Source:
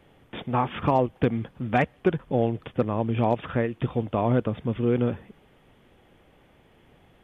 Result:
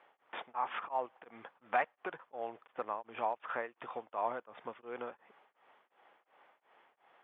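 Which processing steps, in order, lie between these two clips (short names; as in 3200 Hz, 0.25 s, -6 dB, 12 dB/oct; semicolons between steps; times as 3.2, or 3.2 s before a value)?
compressor 3:1, threshold -24 dBFS, peak gain reduction 6.5 dB; ladder band-pass 1200 Hz, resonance 25%; beating tremolo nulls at 2.8 Hz; gain +11 dB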